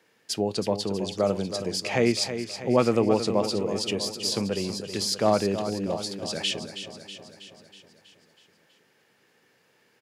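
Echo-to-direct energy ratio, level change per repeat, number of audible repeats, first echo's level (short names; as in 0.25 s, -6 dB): -8.0 dB, -4.5 dB, 6, -10.0 dB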